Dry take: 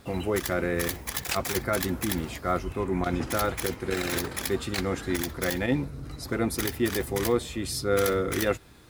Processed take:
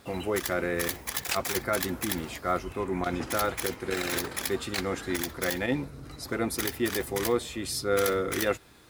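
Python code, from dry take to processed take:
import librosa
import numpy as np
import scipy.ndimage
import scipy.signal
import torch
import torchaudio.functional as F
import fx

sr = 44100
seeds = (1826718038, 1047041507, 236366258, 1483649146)

y = fx.low_shelf(x, sr, hz=220.0, db=-7.5)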